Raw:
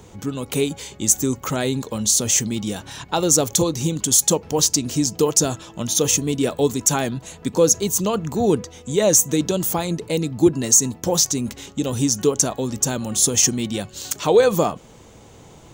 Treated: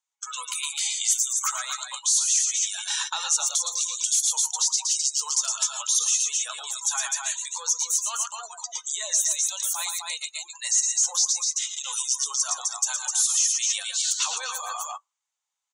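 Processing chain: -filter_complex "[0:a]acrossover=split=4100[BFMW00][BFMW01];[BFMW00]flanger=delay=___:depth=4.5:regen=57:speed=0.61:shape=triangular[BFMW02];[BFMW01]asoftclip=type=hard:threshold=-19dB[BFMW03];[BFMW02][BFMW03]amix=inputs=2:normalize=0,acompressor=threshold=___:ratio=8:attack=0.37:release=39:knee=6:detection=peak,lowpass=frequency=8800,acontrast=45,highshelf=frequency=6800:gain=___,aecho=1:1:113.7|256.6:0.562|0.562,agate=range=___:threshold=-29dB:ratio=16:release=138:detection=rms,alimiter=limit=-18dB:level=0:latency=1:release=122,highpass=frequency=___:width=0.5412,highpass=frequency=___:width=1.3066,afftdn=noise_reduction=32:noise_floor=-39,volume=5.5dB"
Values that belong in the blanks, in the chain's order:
7.7, -26dB, 8, -13dB, 1000, 1000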